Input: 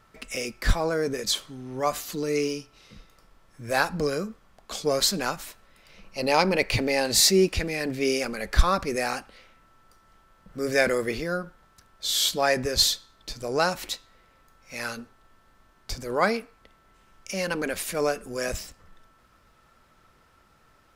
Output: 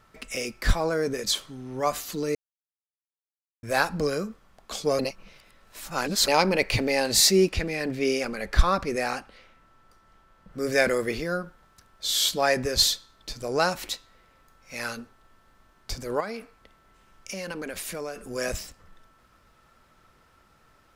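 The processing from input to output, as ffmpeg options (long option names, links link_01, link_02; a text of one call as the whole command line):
ffmpeg -i in.wav -filter_complex "[0:a]asettb=1/sr,asplit=3[link_01][link_02][link_03];[link_01]atrim=end=7.494[link_04];[link_02]atrim=start=7.49:end=10.58,asetpts=PTS-STARTPTS,afade=type=in:duration=0.004:curve=qsin,afade=type=out:start_time=3.086:duration=0.004:curve=qsin,highshelf=frequency=6200:gain=-6.5[link_05];[link_03]atrim=start=10.576[link_06];[link_04][link_05]acrossfade=duration=0.004:curve1=hsin:curve2=qsin[link_07];[link_07][link_06]acrossfade=duration=0.004:curve1=qsin:curve2=hsin,asettb=1/sr,asplit=3[link_08][link_09][link_10];[link_08]atrim=end=16.204[link_11];[link_09]atrim=start=16.2:end=18.25,asetpts=PTS-STARTPTS,afade=type=in:duration=0.004:curve=qsin,afade=type=out:start_time=2.046:duration=0.004:curve=qsin,acompressor=threshold=-31dB:ratio=4:attack=3.2:release=140:knee=1:detection=peak[link_12];[link_10]atrim=start=18.246[link_13];[link_11][link_12]acrossfade=duration=0.004:curve1=hsin:curve2=qsin[link_14];[link_14][link_13]acrossfade=duration=0.004:curve1=qsin:curve2=hsin,asplit=5[link_15][link_16][link_17][link_18][link_19];[link_15]atrim=end=2.35,asetpts=PTS-STARTPTS,afade=type=out:start_time=2.346:duration=0.004:curve=hsin[link_20];[link_16]atrim=start=2.35:end=3.63,asetpts=PTS-STARTPTS,volume=0[link_21];[link_17]atrim=start=3.63:end=4.992,asetpts=PTS-STARTPTS,afade=type=in:duration=0.004:curve=hsin[link_22];[link_18]atrim=start=4.988:end=6.282,asetpts=PTS-STARTPTS,areverse[link_23];[link_19]atrim=start=6.278[link_24];[link_20][link_21][link_22]concat=n=3:v=0:a=1[link_25];[link_25][link_23]acrossfade=duration=0.004:curve1=hsin:curve2=hsin[link_26];[link_26][link_24]acrossfade=duration=0.004:curve1=hsin:curve2=hsin" out.wav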